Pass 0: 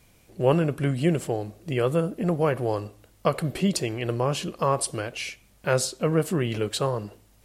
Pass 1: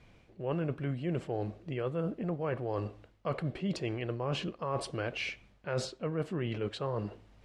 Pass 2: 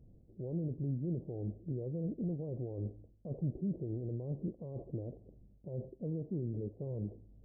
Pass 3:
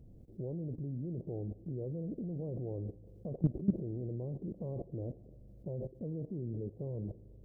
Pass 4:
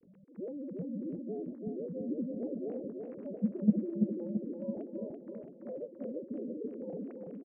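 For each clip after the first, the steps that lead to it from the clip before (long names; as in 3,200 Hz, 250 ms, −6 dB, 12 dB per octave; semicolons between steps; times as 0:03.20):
low-pass filter 3,200 Hz 12 dB per octave; reversed playback; downward compressor 6 to 1, threshold −31 dBFS, peak gain reduction 15.5 dB; reversed playback
brickwall limiter −28.5 dBFS, peak gain reduction 7.5 dB; Gaussian smoothing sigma 19 samples; level +2 dB
spring reverb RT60 2.8 s, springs 40/45 ms, chirp 35 ms, DRR 19.5 dB; output level in coarse steps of 16 dB; level +9.5 dB
three sine waves on the formant tracks; on a send: repeating echo 335 ms, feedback 53%, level −4 dB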